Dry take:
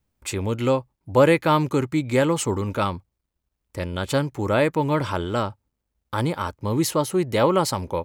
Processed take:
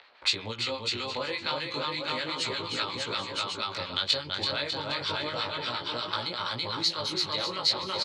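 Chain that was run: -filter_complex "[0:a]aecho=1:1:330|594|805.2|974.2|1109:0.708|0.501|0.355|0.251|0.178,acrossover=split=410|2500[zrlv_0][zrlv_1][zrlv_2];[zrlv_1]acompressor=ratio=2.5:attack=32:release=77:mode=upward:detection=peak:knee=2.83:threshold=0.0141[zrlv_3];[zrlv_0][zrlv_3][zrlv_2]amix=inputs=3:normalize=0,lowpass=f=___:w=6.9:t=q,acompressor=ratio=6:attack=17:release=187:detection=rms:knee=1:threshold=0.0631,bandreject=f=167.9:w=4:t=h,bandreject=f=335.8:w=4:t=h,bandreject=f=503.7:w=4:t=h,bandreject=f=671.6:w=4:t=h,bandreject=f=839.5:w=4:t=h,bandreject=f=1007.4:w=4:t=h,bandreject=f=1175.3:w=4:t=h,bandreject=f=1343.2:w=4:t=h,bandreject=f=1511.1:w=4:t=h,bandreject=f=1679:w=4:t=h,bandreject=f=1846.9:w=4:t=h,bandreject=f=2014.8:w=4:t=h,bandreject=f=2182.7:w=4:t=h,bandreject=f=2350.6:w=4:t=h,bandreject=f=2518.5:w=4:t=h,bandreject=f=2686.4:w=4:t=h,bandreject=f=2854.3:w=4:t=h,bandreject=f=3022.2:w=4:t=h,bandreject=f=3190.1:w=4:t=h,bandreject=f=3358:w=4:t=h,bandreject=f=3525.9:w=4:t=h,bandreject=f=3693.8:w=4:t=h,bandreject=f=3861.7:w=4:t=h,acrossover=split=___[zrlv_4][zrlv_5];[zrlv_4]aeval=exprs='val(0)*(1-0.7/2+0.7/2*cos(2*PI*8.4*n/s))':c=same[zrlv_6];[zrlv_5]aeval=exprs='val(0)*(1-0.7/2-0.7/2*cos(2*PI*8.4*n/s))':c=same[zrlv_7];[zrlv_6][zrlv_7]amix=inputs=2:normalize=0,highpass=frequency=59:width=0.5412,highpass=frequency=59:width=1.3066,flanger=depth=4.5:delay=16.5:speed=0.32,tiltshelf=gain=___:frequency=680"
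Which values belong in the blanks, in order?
4200, 1000, -8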